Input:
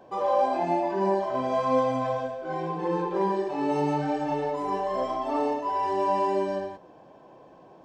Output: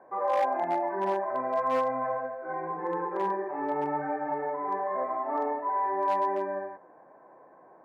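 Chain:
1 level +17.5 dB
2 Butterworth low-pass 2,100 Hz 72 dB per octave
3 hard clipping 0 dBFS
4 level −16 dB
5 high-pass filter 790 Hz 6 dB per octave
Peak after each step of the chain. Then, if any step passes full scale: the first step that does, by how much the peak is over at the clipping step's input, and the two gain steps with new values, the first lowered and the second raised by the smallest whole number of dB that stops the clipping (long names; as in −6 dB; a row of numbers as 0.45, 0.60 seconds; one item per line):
+4.5, +4.5, 0.0, −16.0, −16.0 dBFS
step 1, 4.5 dB
step 1 +12.5 dB, step 4 −11 dB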